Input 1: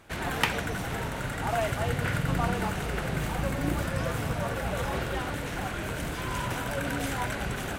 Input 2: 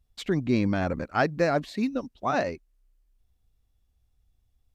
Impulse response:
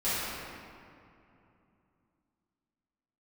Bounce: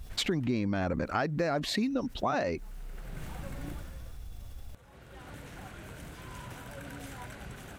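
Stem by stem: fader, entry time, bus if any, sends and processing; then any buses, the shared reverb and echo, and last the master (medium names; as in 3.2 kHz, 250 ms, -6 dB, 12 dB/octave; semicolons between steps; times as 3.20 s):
-14.0 dB, 0.00 s, no send, tone controls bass +3 dB, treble +2 dB; auto duck -19 dB, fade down 0.55 s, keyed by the second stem
+1.0 dB, 0.00 s, no send, level flattener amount 50%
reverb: none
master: compression 5:1, threshold -27 dBFS, peak gain reduction 10 dB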